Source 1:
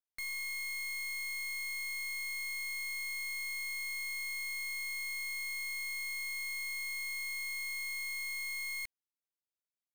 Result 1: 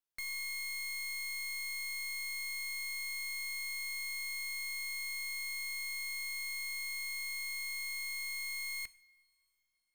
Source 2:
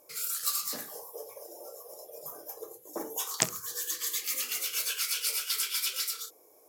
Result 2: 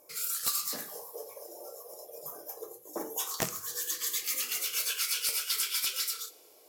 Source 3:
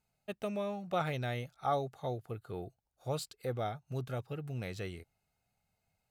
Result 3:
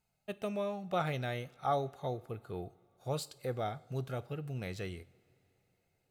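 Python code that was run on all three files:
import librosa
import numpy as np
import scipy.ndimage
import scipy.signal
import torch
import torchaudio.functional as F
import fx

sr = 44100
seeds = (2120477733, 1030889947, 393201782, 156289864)

y = fx.rev_double_slope(x, sr, seeds[0], early_s=0.56, late_s=4.1, knee_db=-19, drr_db=15.5)
y = (np.mod(10.0 ** (16.0 / 20.0) * y + 1.0, 2.0) - 1.0) / 10.0 ** (16.0 / 20.0)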